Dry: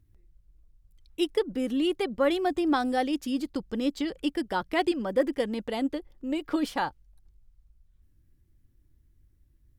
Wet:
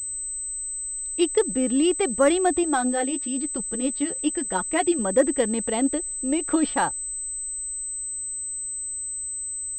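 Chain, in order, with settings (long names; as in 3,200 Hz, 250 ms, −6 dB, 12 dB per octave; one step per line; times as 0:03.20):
0:02.63–0:04.99: flanger 1 Hz, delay 4.3 ms, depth 7.6 ms, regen +18%
switching amplifier with a slow clock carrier 8,100 Hz
level +5.5 dB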